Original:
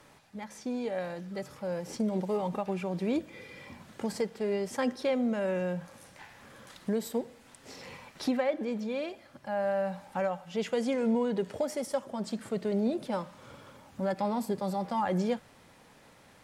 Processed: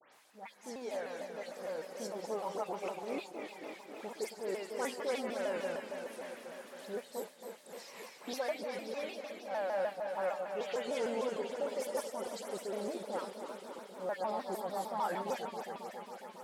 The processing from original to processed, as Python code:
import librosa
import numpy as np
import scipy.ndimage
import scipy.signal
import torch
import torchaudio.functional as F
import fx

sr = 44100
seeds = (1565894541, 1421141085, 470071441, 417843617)

y = fx.reverse_delay_fb(x, sr, ms=136, feedback_pct=85, wet_db=-7.5)
y = fx.transient(y, sr, attack_db=-3, sustain_db=-8)
y = scipy.signal.sosfilt(scipy.signal.butter(2, 460.0, 'highpass', fs=sr, output='sos'), y)
y = fx.high_shelf(y, sr, hz=11000.0, db=7.5)
y = fx.dispersion(y, sr, late='highs', ms=129.0, hz=2700.0)
y = fx.vibrato_shape(y, sr, shape='saw_down', rate_hz=6.6, depth_cents=160.0)
y = F.gain(torch.from_numpy(y), -3.5).numpy()